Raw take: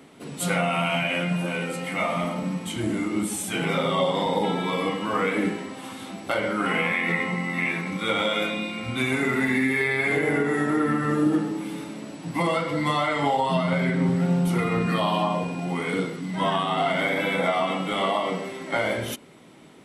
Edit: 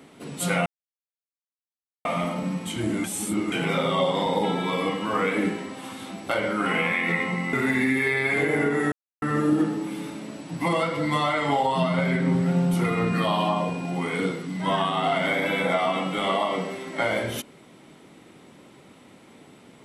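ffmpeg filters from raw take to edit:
ffmpeg -i in.wav -filter_complex "[0:a]asplit=8[link_01][link_02][link_03][link_04][link_05][link_06][link_07][link_08];[link_01]atrim=end=0.66,asetpts=PTS-STARTPTS,afade=type=out:start_time=0.656:duration=0.004:curve=hsin[link_09];[link_02]atrim=start=0.66:end=2.05,asetpts=PTS-STARTPTS,volume=0[link_10];[link_03]atrim=start=2.05:end=3.042,asetpts=PTS-STARTPTS,afade=type=in:duration=0.004:curve=hsin[link_11];[link_04]atrim=start=3.038:end=3.522,asetpts=PTS-STARTPTS,areverse[link_12];[link_05]atrim=start=3.518:end=7.532[link_13];[link_06]atrim=start=9.268:end=10.66,asetpts=PTS-STARTPTS,afade=type=out:start_time=1.388:duration=0.004:curve=hsin[link_14];[link_07]atrim=start=10.66:end=10.96,asetpts=PTS-STARTPTS,volume=0[link_15];[link_08]atrim=start=10.96,asetpts=PTS-STARTPTS,afade=type=in:duration=0.004:curve=hsin[link_16];[link_09][link_10][link_11]concat=n=3:v=0:a=1[link_17];[link_17][link_12]acrossfade=duration=0.004:curve1=hsin:curve2=hsin[link_18];[link_18][link_13]acrossfade=duration=0.004:curve1=hsin:curve2=hsin[link_19];[link_14][link_15][link_16]concat=n=3:v=0:a=1[link_20];[link_19][link_20]acrossfade=duration=0.004:curve1=hsin:curve2=hsin" out.wav

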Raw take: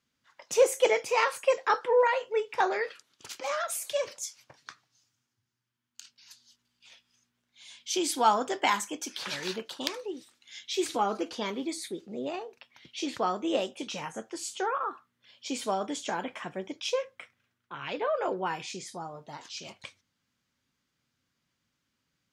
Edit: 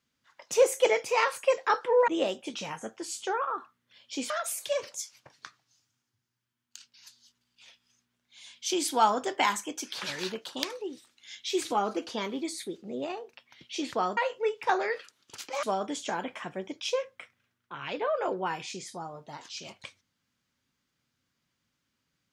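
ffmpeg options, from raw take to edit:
ffmpeg -i in.wav -filter_complex "[0:a]asplit=5[link_01][link_02][link_03][link_04][link_05];[link_01]atrim=end=2.082[link_06];[link_02]atrim=start=13.408:end=15.632[link_07];[link_03]atrim=start=3.538:end=13.412[link_08];[link_04]atrim=start=2.078:end=3.542[link_09];[link_05]atrim=start=15.628[link_10];[link_06][link_07]acrossfade=duration=0.004:curve1=hsin:curve2=hsin[link_11];[link_11][link_08]acrossfade=duration=0.004:curve1=hsin:curve2=hsin[link_12];[link_12][link_09]acrossfade=duration=0.004:curve1=hsin:curve2=hsin[link_13];[link_13][link_10]acrossfade=duration=0.004:curve1=hsin:curve2=hsin" out.wav

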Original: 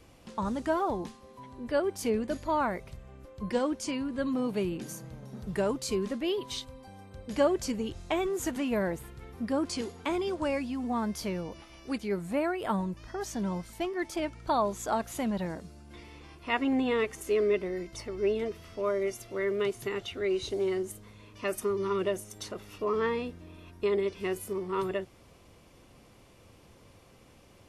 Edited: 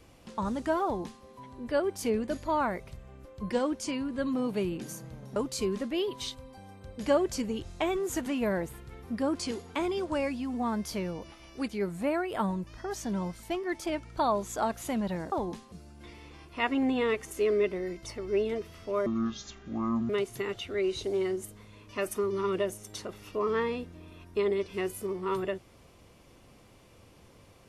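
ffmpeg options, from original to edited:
ffmpeg -i in.wav -filter_complex "[0:a]asplit=6[link_01][link_02][link_03][link_04][link_05][link_06];[link_01]atrim=end=5.362[link_07];[link_02]atrim=start=5.658:end=15.622[link_08];[link_03]atrim=start=0.838:end=1.242[link_09];[link_04]atrim=start=15.618:end=18.964[link_10];[link_05]atrim=start=18.96:end=19.56,asetpts=PTS-STARTPTS,asetrate=25578,aresample=44100[link_11];[link_06]atrim=start=19.556[link_12];[link_07][link_08]acrossfade=duration=0.004:curve1=hsin:curve2=hsin[link_13];[link_13][link_09]acrossfade=duration=0.004:curve1=hsin:curve2=hsin[link_14];[link_14][link_10]acrossfade=duration=0.004:curve1=hsin:curve2=hsin[link_15];[link_15][link_11]acrossfade=duration=0.004:curve1=hsin:curve2=hsin[link_16];[link_16][link_12]acrossfade=duration=0.004:curve1=hsin:curve2=hsin" out.wav

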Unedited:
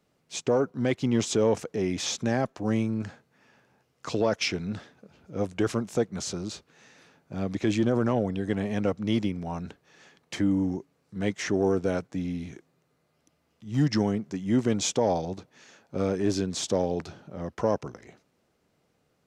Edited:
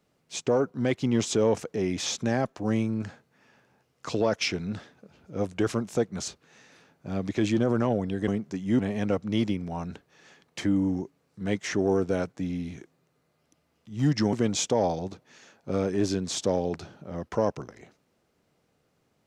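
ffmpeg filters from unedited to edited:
ffmpeg -i in.wav -filter_complex "[0:a]asplit=5[link_01][link_02][link_03][link_04][link_05];[link_01]atrim=end=6.282[link_06];[link_02]atrim=start=6.538:end=8.542[link_07];[link_03]atrim=start=14.078:end=14.592[link_08];[link_04]atrim=start=8.538:end=14.082[link_09];[link_05]atrim=start=14.588[link_10];[link_06][link_07]acrossfade=duration=0.004:curve1=hsin:curve2=hsin[link_11];[link_11][link_08]acrossfade=duration=0.004:curve1=hsin:curve2=hsin[link_12];[link_12][link_09]acrossfade=duration=0.004:curve1=hsin:curve2=hsin[link_13];[link_13][link_10]acrossfade=duration=0.004:curve1=hsin:curve2=hsin" out.wav

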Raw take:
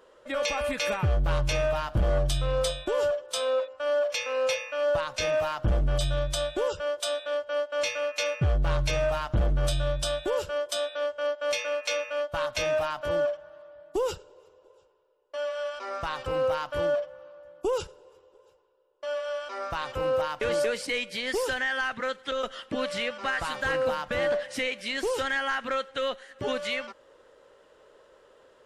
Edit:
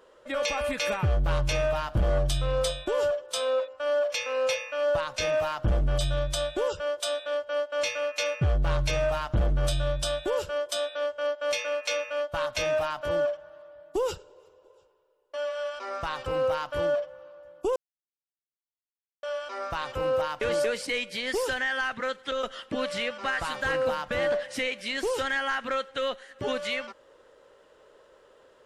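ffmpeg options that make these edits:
ffmpeg -i in.wav -filter_complex "[0:a]asplit=3[link_01][link_02][link_03];[link_01]atrim=end=17.76,asetpts=PTS-STARTPTS,afade=type=out:start_time=17.756:duration=0.004:curve=hsin[link_04];[link_02]atrim=start=17.76:end=19.23,asetpts=PTS-STARTPTS,volume=0[link_05];[link_03]atrim=start=19.23,asetpts=PTS-STARTPTS,afade=type=in:duration=0.004:curve=hsin[link_06];[link_04][link_05][link_06]concat=n=3:v=0:a=1" out.wav

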